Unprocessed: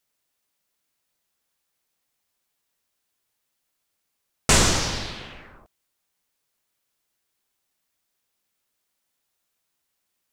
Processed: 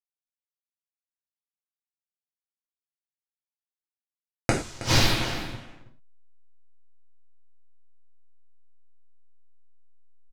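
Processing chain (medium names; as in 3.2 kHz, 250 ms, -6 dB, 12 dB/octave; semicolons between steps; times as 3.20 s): send-on-delta sampling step -39 dBFS; level-controlled noise filter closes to 2.7 kHz, open at -26.5 dBFS; inverted gate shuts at -13 dBFS, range -33 dB; delay 320 ms -14.5 dB; reverberation, pre-delay 3 ms, DRR -3.5 dB; trim +5 dB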